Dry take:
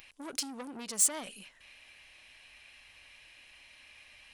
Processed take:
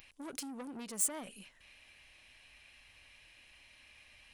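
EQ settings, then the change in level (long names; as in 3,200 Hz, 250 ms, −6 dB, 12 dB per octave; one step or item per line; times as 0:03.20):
dynamic equaliser 4,800 Hz, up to −8 dB, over −50 dBFS, Q 0.94
low-shelf EQ 300 Hz +6.5 dB
high-shelf EQ 11,000 Hz +3 dB
−4.5 dB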